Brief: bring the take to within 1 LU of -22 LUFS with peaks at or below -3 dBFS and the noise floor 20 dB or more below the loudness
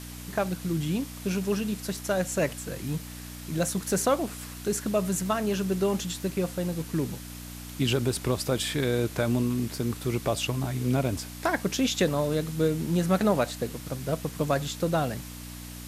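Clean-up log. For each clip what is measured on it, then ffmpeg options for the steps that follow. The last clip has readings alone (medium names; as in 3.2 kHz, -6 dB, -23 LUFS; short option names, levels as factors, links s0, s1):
hum 60 Hz; highest harmonic 300 Hz; hum level -40 dBFS; noise floor -41 dBFS; noise floor target -49 dBFS; loudness -28.5 LUFS; peak level -12.0 dBFS; loudness target -22.0 LUFS
-> -af "bandreject=f=60:t=h:w=4,bandreject=f=120:t=h:w=4,bandreject=f=180:t=h:w=4,bandreject=f=240:t=h:w=4,bandreject=f=300:t=h:w=4"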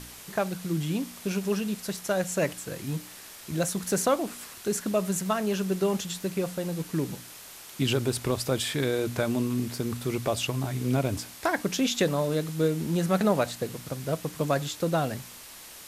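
hum not found; noise floor -46 dBFS; noise floor target -49 dBFS
-> -af "afftdn=nr=6:nf=-46"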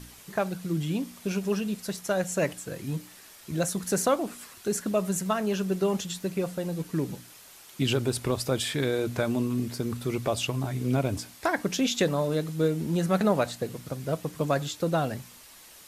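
noise floor -51 dBFS; loudness -29.0 LUFS; peak level -12.5 dBFS; loudness target -22.0 LUFS
-> -af "volume=2.24"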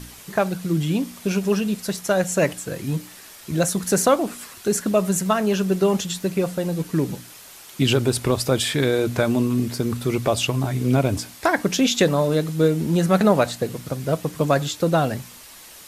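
loudness -22.0 LUFS; peak level -5.5 dBFS; noise floor -44 dBFS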